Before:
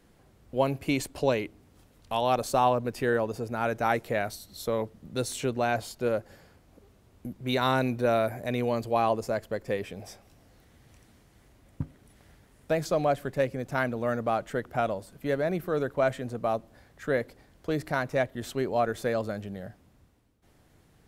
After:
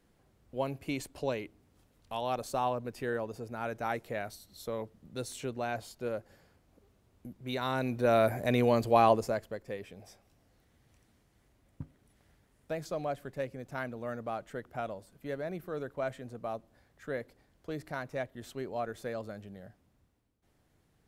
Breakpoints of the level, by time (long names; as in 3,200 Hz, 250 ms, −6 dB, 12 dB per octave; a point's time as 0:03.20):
0:07.69 −8 dB
0:08.29 +2 dB
0:09.12 +2 dB
0:09.63 −9.5 dB